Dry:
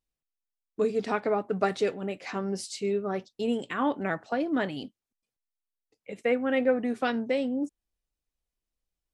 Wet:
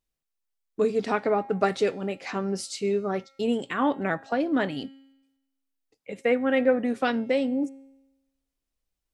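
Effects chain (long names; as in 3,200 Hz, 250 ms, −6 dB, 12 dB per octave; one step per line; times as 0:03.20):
tuned comb filter 270 Hz, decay 0.99 s, mix 50%
level +8.5 dB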